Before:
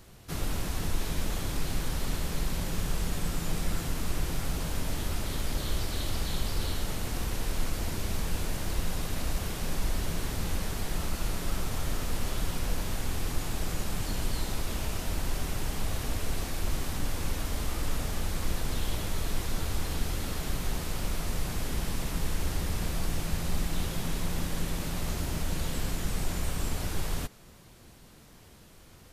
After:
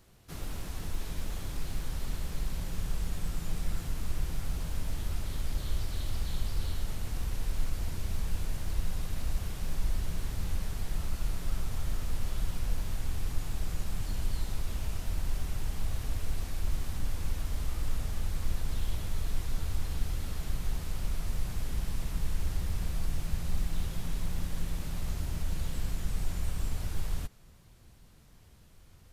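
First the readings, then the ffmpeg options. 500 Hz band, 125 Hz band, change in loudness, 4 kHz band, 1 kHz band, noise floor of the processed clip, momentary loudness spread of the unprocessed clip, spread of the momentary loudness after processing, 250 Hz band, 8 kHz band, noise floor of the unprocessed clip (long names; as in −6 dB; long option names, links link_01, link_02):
−9.0 dB, −2.0 dB, −3.5 dB, −8.0 dB, −8.5 dB, −56 dBFS, 1 LU, 2 LU, −7.0 dB, −8.0 dB, −53 dBFS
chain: -af "acrusher=bits=8:mode=log:mix=0:aa=0.000001,asubboost=boost=2:cutoff=170,volume=-8dB"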